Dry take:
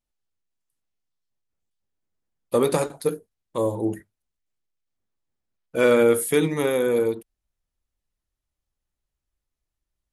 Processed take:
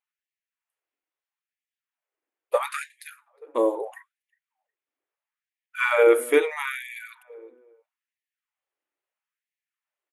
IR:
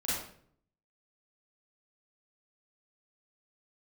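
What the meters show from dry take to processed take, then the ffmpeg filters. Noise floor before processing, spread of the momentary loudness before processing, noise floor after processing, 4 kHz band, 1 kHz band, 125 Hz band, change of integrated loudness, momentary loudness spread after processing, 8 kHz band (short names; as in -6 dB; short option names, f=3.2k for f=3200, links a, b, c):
-85 dBFS, 15 LU, under -85 dBFS, -3.5 dB, +1.5 dB, under -35 dB, -1.0 dB, 22 LU, -7.5 dB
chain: -filter_complex "[0:a]highshelf=f=3.3k:t=q:w=1.5:g=-9,asplit=2[a][b];[b]adelay=362,lowpass=f=1.8k:p=1,volume=-23.5dB,asplit=2[c][d];[d]adelay=362,lowpass=f=1.8k:p=1,volume=0.22[e];[c][e]amix=inputs=2:normalize=0[f];[a][f]amix=inputs=2:normalize=0,afftfilt=real='re*gte(b*sr/1024,250*pow(1700/250,0.5+0.5*sin(2*PI*0.76*pts/sr)))':imag='im*gte(b*sr/1024,250*pow(1700/250,0.5+0.5*sin(2*PI*0.76*pts/sr)))':win_size=1024:overlap=0.75,volume=2dB"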